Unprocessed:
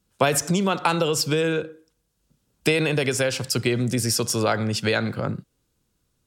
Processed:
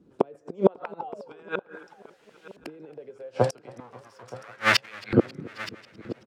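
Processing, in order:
0:03.80–0:05.03: each half-wave held at its own peak
downward compressor 16 to 1, threshold −21 dBFS, peak gain reduction 8.5 dB
0:00.99–0:01.43: sound drawn into the spectrogram fall 360–890 Hz −26 dBFS
flanger 1.1 Hz, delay 6.6 ms, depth 3.3 ms, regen +60%
gate with flip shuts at −22 dBFS, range −37 dB
auto-filter band-pass saw up 0.39 Hz 300–2,600 Hz
repeating echo 922 ms, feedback 33%, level −18.5 dB
boost into a limiter +32.5 dB
feedback echo with a swinging delay time 271 ms, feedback 73%, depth 102 cents, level −23.5 dB
level −4.5 dB

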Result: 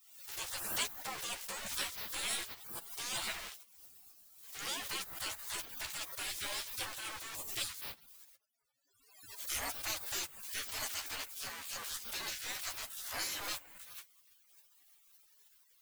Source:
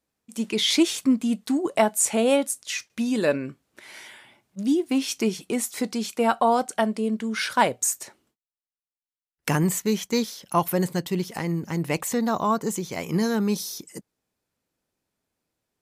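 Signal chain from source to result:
converter with a step at zero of −31 dBFS
gate on every frequency bin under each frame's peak −30 dB weak
multi-voice chorus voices 4, 1.3 Hz, delay 12 ms, depth 3 ms
noise that follows the level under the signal 14 dB
background raised ahead of every attack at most 65 dB per second
level +4.5 dB

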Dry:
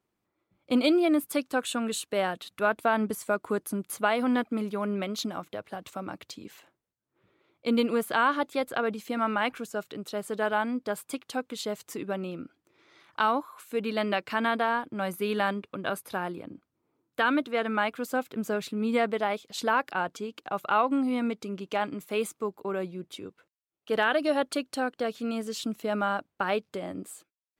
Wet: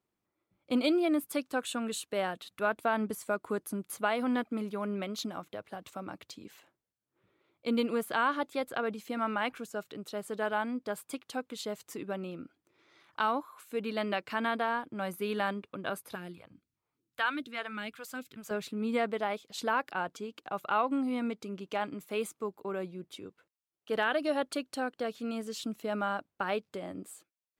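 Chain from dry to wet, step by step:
0:16.15–0:18.51: all-pass phaser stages 2, 2.5 Hz, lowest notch 250–1,000 Hz
level −4.5 dB

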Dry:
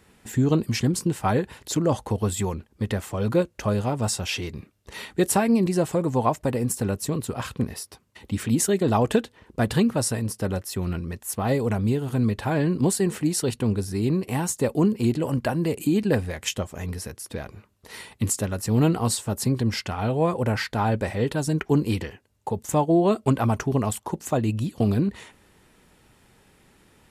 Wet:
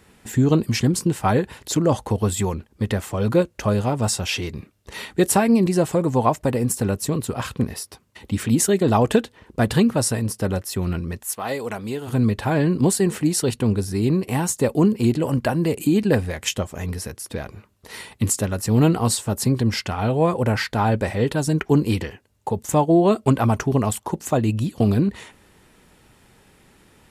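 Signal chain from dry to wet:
0:11.24–0:12.07: high-pass filter 1,100 Hz → 530 Hz 6 dB per octave
level +3.5 dB

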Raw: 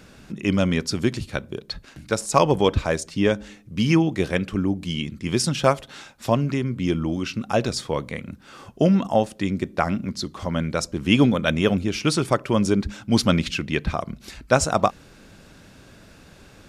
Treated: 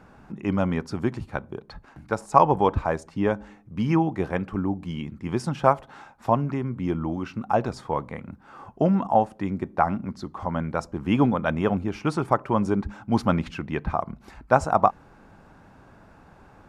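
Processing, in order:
drawn EQ curve 580 Hz 0 dB, 830 Hz +10 dB, 3,600 Hz −13 dB
level −3.5 dB

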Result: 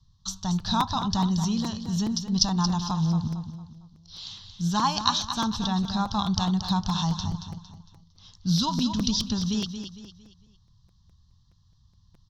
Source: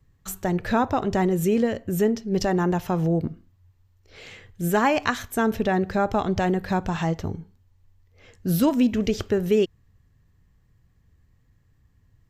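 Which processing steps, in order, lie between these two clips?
drawn EQ curve 200 Hz 0 dB, 350 Hz −21 dB, 530 Hz −24 dB, 1,000 Hz +4 dB, 2,200 Hz −22 dB, 3,600 Hz +13 dB, 5,800 Hz +12 dB, 8,500 Hz −16 dB, 13,000 Hz −23 dB
on a send: repeating echo 228 ms, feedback 38%, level −9 dB
on the sum: regular buffer underruns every 0.21 s, samples 256, repeat, from 0:00.59

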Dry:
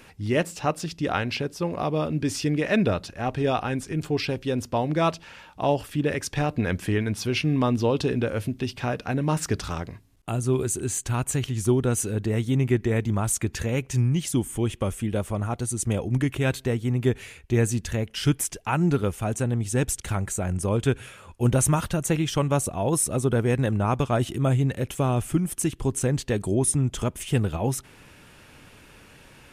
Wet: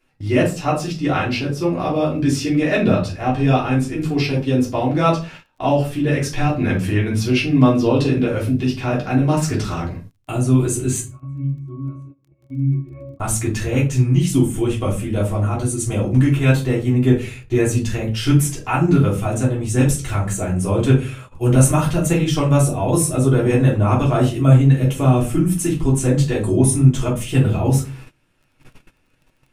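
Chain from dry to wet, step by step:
0:11.01–0:13.20: resonances in every octave C#, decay 0.51 s
rectangular room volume 170 cubic metres, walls furnished, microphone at 3.2 metres
noise gate −35 dBFS, range −21 dB
surface crackle 15 per second −44 dBFS
level −1.5 dB

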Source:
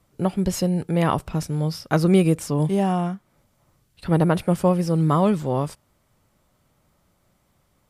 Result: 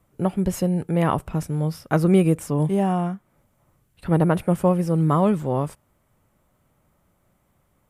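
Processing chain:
parametric band 4,700 Hz −9.5 dB 1.1 octaves

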